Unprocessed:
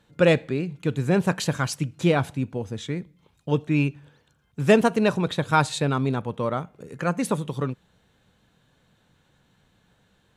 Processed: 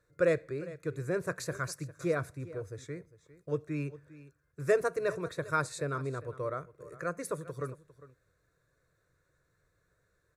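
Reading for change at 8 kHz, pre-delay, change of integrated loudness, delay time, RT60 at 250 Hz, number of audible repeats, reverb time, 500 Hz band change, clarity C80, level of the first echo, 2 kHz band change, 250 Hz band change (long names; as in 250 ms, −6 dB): −8.5 dB, no reverb audible, −10.5 dB, 403 ms, no reverb audible, 1, no reverb audible, −7.5 dB, no reverb audible, −17.5 dB, −9.0 dB, −15.5 dB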